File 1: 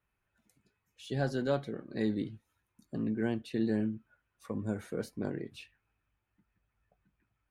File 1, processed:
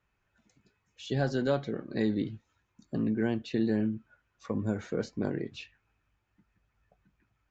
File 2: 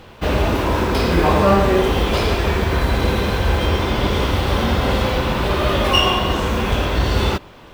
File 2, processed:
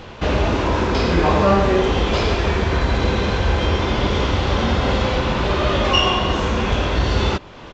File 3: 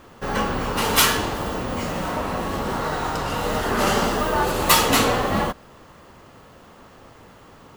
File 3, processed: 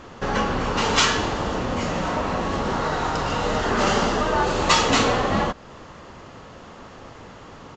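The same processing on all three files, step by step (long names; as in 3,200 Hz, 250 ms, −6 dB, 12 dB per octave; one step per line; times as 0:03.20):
in parallel at +3 dB: downward compressor, threshold −31 dBFS
on the sum: downsampling to 16,000 Hz
level −2.5 dB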